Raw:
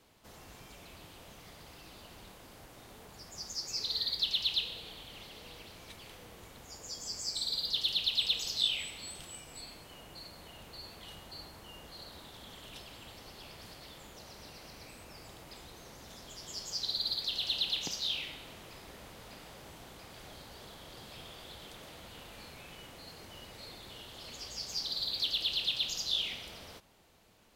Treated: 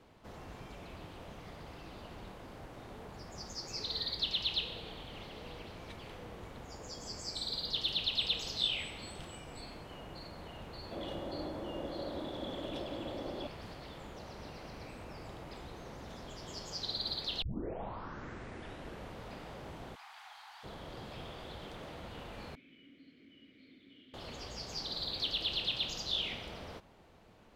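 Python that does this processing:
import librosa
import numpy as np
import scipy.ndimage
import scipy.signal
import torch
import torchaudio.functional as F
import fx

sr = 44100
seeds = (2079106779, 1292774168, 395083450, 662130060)

y = fx.small_body(x, sr, hz=(320.0, 550.0, 3400.0), ring_ms=25, db=13, at=(10.91, 13.47))
y = fx.ellip_highpass(y, sr, hz=790.0, order=4, stop_db=40, at=(19.94, 20.63), fade=0.02)
y = fx.vowel_filter(y, sr, vowel='i', at=(22.55, 24.14))
y = fx.edit(y, sr, fx.tape_start(start_s=17.42, length_s=1.74), tone=tone)
y = fx.lowpass(y, sr, hz=1400.0, slope=6)
y = y * librosa.db_to_amplitude(6.0)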